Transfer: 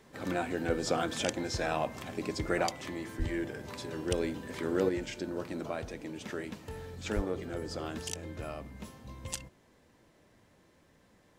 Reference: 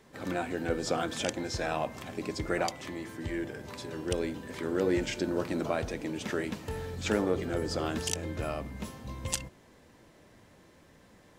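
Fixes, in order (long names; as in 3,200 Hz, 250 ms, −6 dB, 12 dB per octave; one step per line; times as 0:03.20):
high-pass at the plosives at 0:03.18/0:07.15
level correction +6 dB, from 0:04.89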